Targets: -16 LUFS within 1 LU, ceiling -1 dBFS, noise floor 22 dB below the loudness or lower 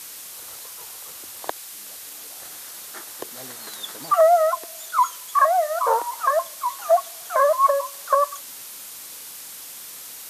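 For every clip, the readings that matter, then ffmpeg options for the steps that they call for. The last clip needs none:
noise floor -39 dBFS; noise floor target -44 dBFS; loudness -21.5 LUFS; peak -6.5 dBFS; loudness target -16.0 LUFS
-> -af "afftdn=nr=6:nf=-39"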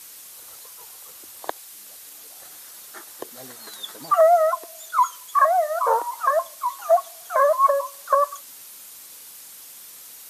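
noise floor -43 dBFS; loudness -21.0 LUFS; peak -6.5 dBFS; loudness target -16.0 LUFS
-> -af "volume=5dB"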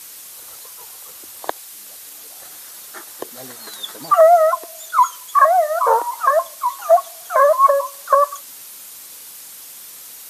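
loudness -16.0 LUFS; peak -1.5 dBFS; noise floor -38 dBFS

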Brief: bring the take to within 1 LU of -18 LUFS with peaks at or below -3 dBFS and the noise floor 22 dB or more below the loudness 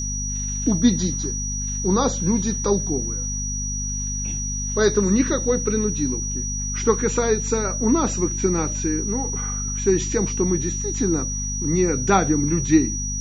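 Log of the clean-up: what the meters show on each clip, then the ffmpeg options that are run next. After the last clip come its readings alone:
hum 50 Hz; harmonics up to 250 Hz; hum level -26 dBFS; steady tone 5800 Hz; tone level -27 dBFS; loudness -22.0 LUFS; peak -3.0 dBFS; loudness target -18.0 LUFS
-> -af "bandreject=f=50:t=h:w=6,bandreject=f=100:t=h:w=6,bandreject=f=150:t=h:w=6,bandreject=f=200:t=h:w=6,bandreject=f=250:t=h:w=6"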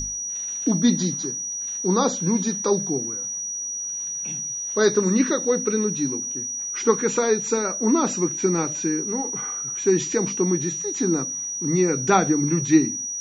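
hum none; steady tone 5800 Hz; tone level -27 dBFS
-> -af "bandreject=f=5.8k:w=30"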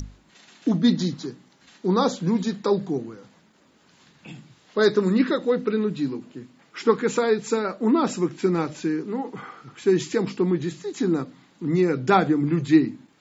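steady tone none; loudness -23.5 LUFS; peak -4.0 dBFS; loudness target -18.0 LUFS
-> -af "volume=5.5dB,alimiter=limit=-3dB:level=0:latency=1"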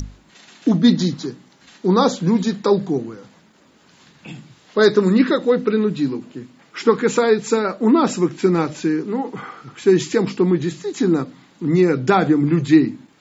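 loudness -18.0 LUFS; peak -3.0 dBFS; noise floor -53 dBFS

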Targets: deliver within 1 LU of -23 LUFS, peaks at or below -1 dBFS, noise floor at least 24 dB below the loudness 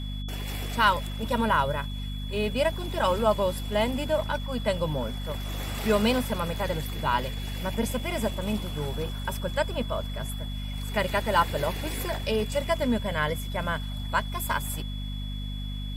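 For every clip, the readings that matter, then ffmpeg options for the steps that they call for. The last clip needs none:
hum 50 Hz; harmonics up to 250 Hz; hum level -31 dBFS; steady tone 3400 Hz; tone level -42 dBFS; loudness -28.5 LUFS; peak -9.0 dBFS; loudness target -23.0 LUFS
-> -af "bandreject=f=50:t=h:w=6,bandreject=f=100:t=h:w=6,bandreject=f=150:t=h:w=6,bandreject=f=200:t=h:w=6,bandreject=f=250:t=h:w=6"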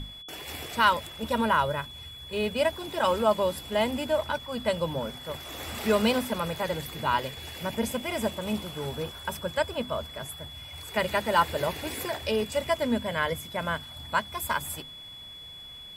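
hum none; steady tone 3400 Hz; tone level -42 dBFS
-> -af "bandreject=f=3.4k:w=30"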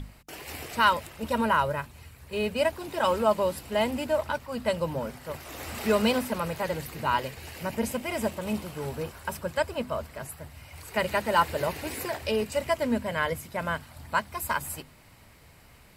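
steady tone none; loudness -29.0 LUFS; peak -9.5 dBFS; loudness target -23.0 LUFS
-> -af "volume=6dB"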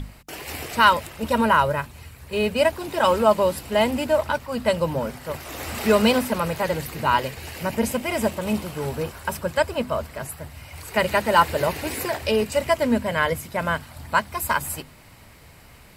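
loudness -23.0 LUFS; peak -3.5 dBFS; noise floor -48 dBFS

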